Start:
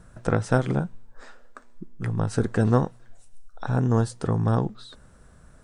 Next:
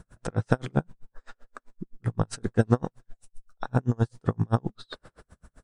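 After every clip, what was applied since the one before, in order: time-frequency box 4.83–5.22 s, 300–5400 Hz +8 dB; logarithmic tremolo 7.7 Hz, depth 40 dB; trim +3.5 dB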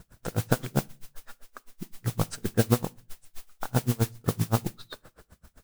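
modulation noise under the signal 12 dB; on a send at -23.5 dB: reverberation RT60 0.45 s, pre-delay 5 ms; on the sum: trim -1.5 dB

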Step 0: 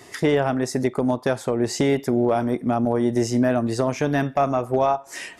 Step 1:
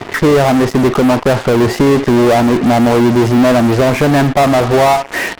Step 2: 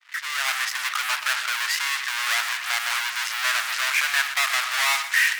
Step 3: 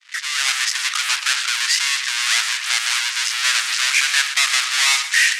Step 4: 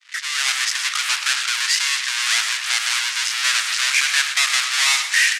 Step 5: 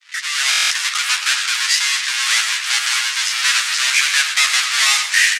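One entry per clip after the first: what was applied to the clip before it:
low-pass 1.6 kHz 12 dB/octave; waveshaping leveller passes 1; in parallel at -4 dB: fuzz box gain 40 dB, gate -45 dBFS; on the sum: trim +3 dB
fade-in on the opening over 0.53 s; inverse Chebyshev high-pass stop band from 420 Hz, stop band 60 dB; bit-crushed delay 123 ms, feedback 35%, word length 7-bit, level -11.5 dB
frequency weighting ITU-R 468; trim -2 dB
frequency-shifting echo 106 ms, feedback 48%, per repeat -48 Hz, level -14 dB; trim -1 dB
bass shelf 500 Hz -3.5 dB; doubling 12 ms -4 dB; buffer glitch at 0.50 s, samples 1024, times 8; trim +1.5 dB

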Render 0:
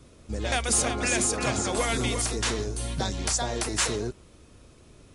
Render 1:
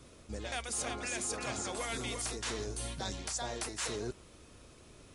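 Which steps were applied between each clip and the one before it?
bass shelf 380 Hz -5.5 dB; reverse; compression, threshold -35 dBFS, peak gain reduction 13.5 dB; reverse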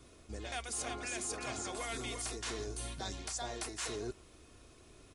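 comb 2.8 ms, depth 30%; trim -3 dB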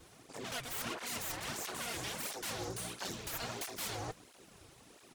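full-wave rectifier; cancelling through-zero flanger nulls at 1.5 Hz, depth 5.2 ms; trim +7 dB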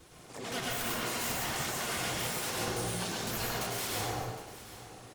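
delay 763 ms -15.5 dB; plate-style reverb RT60 1.1 s, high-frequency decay 0.65×, pre-delay 85 ms, DRR -3.5 dB; trim +1.5 dB

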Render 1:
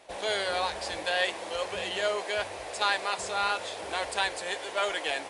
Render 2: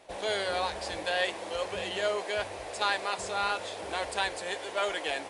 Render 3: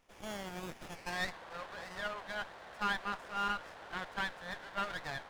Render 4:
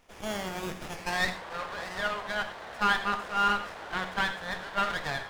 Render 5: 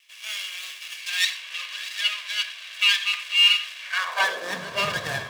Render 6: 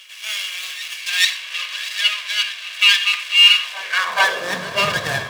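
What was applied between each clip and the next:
bass shelf 490 Hz +5 dB; trim -2.5 dB
band-pass sweep 4.1 kHz -> 1.5 kHz, 0.79–1.36 s; sliding maximum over 9 samples
gated-style reverb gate 130 ms flat, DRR 7.5 dB; trim +8 dB
comb filter that takes the minimum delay 1.8 ms; high-pass sweep 2.7 kHz -> 110 Hz, 3.80–4.77 s; trim +6.5 dB
reverse echo 432 ms -17.5 dB; trim +6.5 dB

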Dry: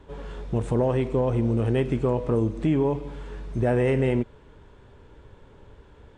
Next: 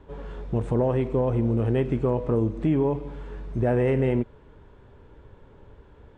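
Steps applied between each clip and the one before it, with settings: treble shelf 3.3 kHz -10.5 dB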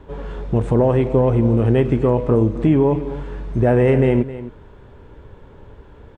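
delay 265 ms -15 dB; trim +7.5 dB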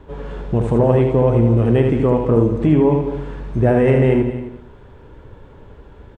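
multi-tap echo 77/200 ms -5.5/-13.5 dB

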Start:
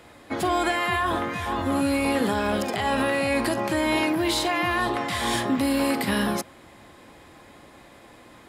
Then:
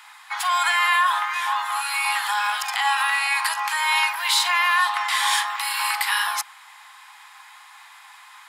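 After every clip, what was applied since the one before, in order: steep high-pass 830 Hz 72 dB/octave; trim +7 dB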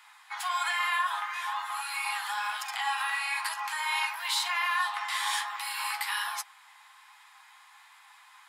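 flange 1.1 Hz, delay 7.1 ms, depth 6.8 ms, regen -32%; trim -5.5 dB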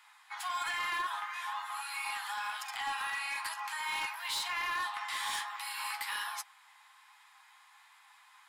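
overload inside the chain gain 25 dB; trim -5 dB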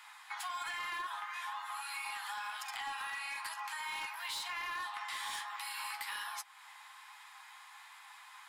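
compression 3:1, threshold -48 dBFS, peak gain reduction 11.5 dB; trim +6 dB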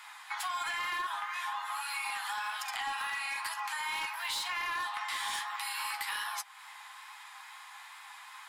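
wow and flutter 21 cents; trim +5 dB

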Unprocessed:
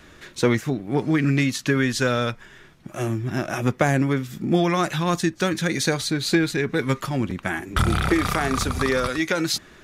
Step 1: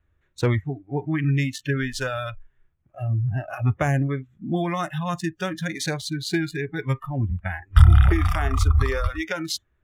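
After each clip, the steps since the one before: local Wiener filter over 9 samples; spectral noise reduction 24 dB; resonant low shelf 130 Hz +13 dB, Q 1.5; trim -3 dB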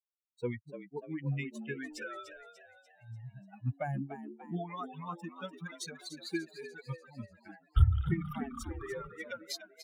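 expander on every frequency bin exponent 3; on a send: frequency-shifting echo 294 ms, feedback 47%, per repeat +83 Hz, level -10.5 dB; on the sum: trim -7.5 dB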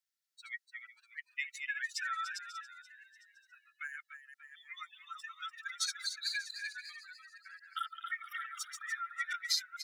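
chunks repeated in reverse 217 ms, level -5 dB; rippled Chebyshev high-pass 1.3 kHz, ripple 6 dB; trim +9 dB

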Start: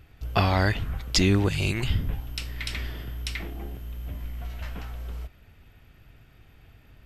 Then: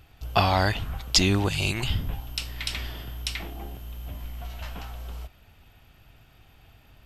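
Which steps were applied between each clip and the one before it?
FFT filter 460 Hz 0 dB, 790 Hz +7 dB, 2 kHz 0 dB, 2.9 kHz +6 dB; trim -2 dB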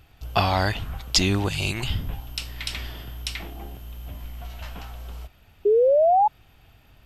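painted sound rise, 5.65–6.28 s, 400–870 Hz -17 dBFS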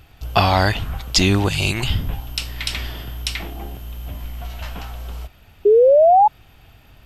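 loudness maximiser +7 dB; trim -1 dB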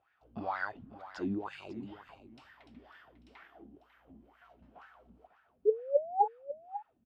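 wah-wah 2.1 Hz 220–1700 Hz, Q 6.4; delay 547 ms -13.5 dB; trim -7.5 dB

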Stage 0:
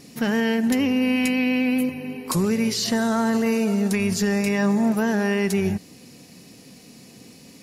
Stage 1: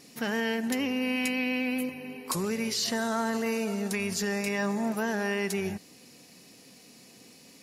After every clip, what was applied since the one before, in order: bass shelf 250 Hz -11 dB; trim -4 dB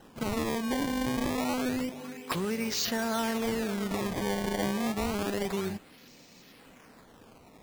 decimation with a swept rate 19×, swing 160% 0.28 Hz; trim -1 dB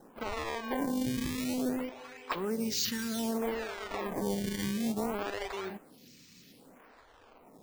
lamp-driven phase shifter 0.6 Hz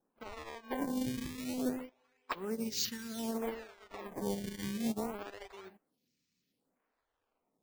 upward expansion 2.5:1, over -46 dBFS

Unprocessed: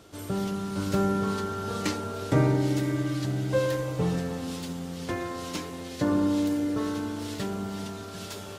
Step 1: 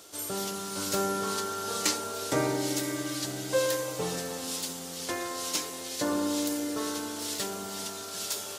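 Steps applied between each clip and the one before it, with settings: tone controls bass -15 dB, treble +12 dB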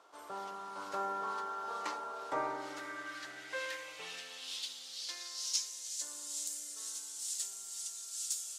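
band-pass sweep 1 kHz -> 7.6 kHz, 2.34–6.09 s; trim +1 dB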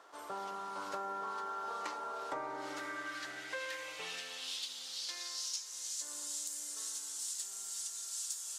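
compression 6:1, threshold -40 dBFS, peak gain reduction 11.5 dB; band noise 830–1900 Hz -73 dBFS; trim +3 dB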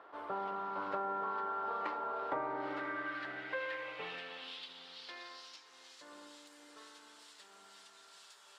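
distance through air 440 m; trim +5 dB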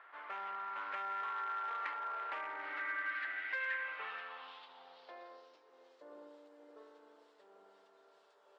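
overload inside the chain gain 33 dB; band-pass sweep 2 kHz -> 490 Hz, 3.56–5.48 s; trim +7 dB

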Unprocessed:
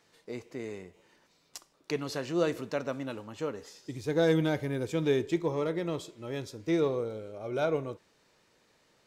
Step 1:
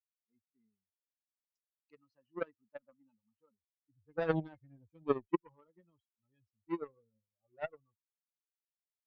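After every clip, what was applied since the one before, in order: expander on every frequency bin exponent 3; low-pass 1.3 kHz 12 dB/octave; Chebyshev shaper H 3 -10 dB, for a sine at -18.5 dBFS; trim +5.5 dB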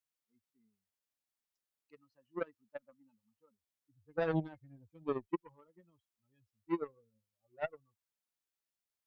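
peak limiter -24 dBFS, peak gain reduction 10 dB; trim +2.5 dB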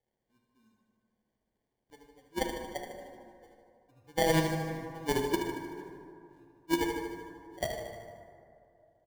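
sample-rate reducer 1.3 kHz, jitter 0%; feedback delay 76 ms, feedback 59%, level -8 dB; plate-style reverb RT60 2.6 s, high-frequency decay 0.4×, DRR 4 dB; trim +5 dB

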